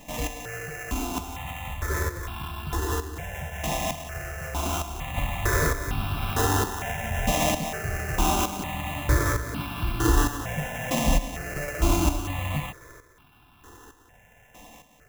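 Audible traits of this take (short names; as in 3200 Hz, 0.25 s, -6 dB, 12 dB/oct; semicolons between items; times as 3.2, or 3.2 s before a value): a buzz of ramps at a fixed pitch in blocks of 16 samples; chopped level 1.1 Hz, depth 65%, duty 30%; aliases and images of a low sample rate 4500 Hz, jitter 0%; notches that jump at a steady rate 2.2 Hz 390–1900 Hz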